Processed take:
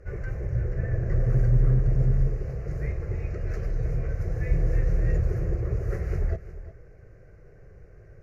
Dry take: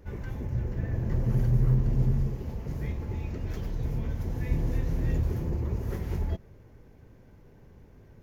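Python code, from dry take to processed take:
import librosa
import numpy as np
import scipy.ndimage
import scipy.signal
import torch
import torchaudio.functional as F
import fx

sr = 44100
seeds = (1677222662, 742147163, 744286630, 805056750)

p1 = fx.peak_eq(x, sr, hz=76.0, db=-4.5, octaves=0.37)
p2 = fx.fixed_phaser(p1, sr, hz=920.0, stages=6)
p3 = np.clip(p2, -10.0 ** (-23.0 / 20.0), 10.0 ** (-23.0 / 20.0))
p4 = p2 + F.gain(torch.from_numpy(p3), -5.5).numpy()
p5 = fx.air_absorb(p4, sr, metres=68.0)
p6 = p5 + 10.0 ** (-14.5 / 20.0) * np.pad(p5, (int(354 * sr / 1000.0), 0))[:len(p5)]
y = F.gain(torch.from_numpy(p6), 2.5).numpy()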